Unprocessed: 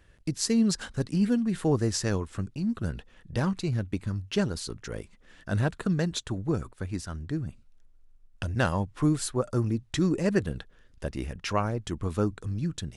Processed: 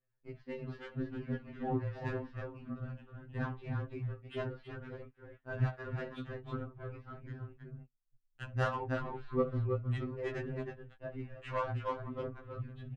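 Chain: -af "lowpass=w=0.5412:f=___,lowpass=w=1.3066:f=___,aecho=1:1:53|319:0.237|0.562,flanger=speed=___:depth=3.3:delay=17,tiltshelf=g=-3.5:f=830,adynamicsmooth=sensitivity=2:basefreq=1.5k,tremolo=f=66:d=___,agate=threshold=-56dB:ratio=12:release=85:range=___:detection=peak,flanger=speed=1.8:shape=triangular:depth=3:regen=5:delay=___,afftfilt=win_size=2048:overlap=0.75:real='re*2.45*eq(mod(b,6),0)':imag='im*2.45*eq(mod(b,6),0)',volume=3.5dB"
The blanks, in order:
3.2k, 3.2k, 0.7, 0.519, -17dB, 7.3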